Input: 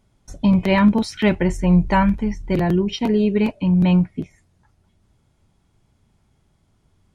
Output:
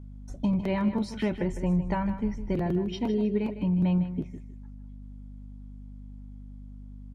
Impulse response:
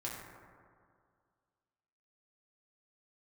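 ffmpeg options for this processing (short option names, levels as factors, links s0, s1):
-af "aeval=exprs='val(0)+0.0158*(sin(2*PI*50*n/s)+sin(2*PI*2*50*n/s)/2+sin(2*PI*3*50*n/s)/3+sin(2*PI*4*50*n/s)/4+sin(2*PI*5*50*n/s)/5)':c=same,lowshelf=f=430:g=-7.5,acompressor=threshold=0.0562:ratio=2.5,tiltshelf=f=870:g=6.5,aecho=1:1:156|312|468:0.266|0.0612|0.0141,volume=0.562"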